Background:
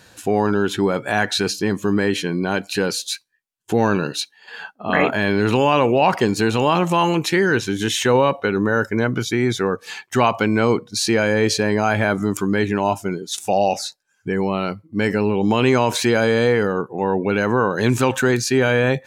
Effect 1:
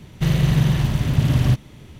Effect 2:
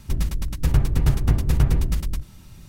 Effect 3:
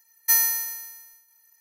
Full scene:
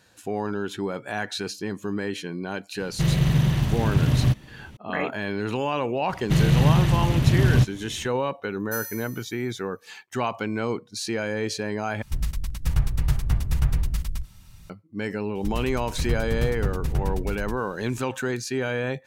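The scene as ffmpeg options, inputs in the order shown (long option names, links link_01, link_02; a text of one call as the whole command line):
ffmpeg -i bed.wav -i cue0.wav -i cue1.wav -i cue2.wav -filter_complex "[1:a]asplit=2[link_01][link_02];[2:a]asplit=2[link_03][link_04];[0:a]volume=-10dB[link_05];[link_02]aresample=32000,aresample=44100[link_06];[link_03]equalizer=frequency=340:width_type=o:width=1.7:gain=-11[link_07];[link_05]asplit=2[link_08][link_09];[link_08]atrim=end=12.024[link_10];[link_07]atrim=end=2.68,asetpts=PTS-STARTPTS,volume=-2.5dB[link_11];[link_09]atrim=start=14.696[link_12];[link_01]atrim=end=1.99,asetpts=PTS-STARTPTS,volume=-3dB,afade=type=in:duration=0.004:curve=hsin,afade=type=out:start_time=1.986:duration=0.004:curve=hsin,adelay=2780[link_13];[link_06]atrim=end=1.99,asetpts=PTS-STARTPTS,volume=-1dB,afade=type=in:duration=0.004:curve=hsin,afade=type=out:start_time=1.986:duration=0.004:curve=hsin,adelay=6090[link_14];[3:a]atrim=end=1.6,asetpts=PTS-STARTPTS,volume=-15dB,afade=type=in:duration=0.004:curve=hsin,afade=type=out:start_time=1.596:duration=0.004:curve=hsin,adelay=8430[link_15];[link_04]atrim=end=2.68,asetpts=PTS-STARTPTS,volume=-7dB,afade=type=in:duration=0.004:curve=hsin,afade=type=out:start_time=2.676:duration=0.004:curve=hsin,adelay=15350[link_16];[link_10][link_11]acrossfade=duration=0.004:curve1=hsin:curve2=hsin[link_17];[link_17][link_12]acrossfade=duration=0.004:curve1=hsin:curve2=hsin[link_18];[link_18][link_13][link_14][link_15][link_16]amix=inputs=5:normalize=0" out.wav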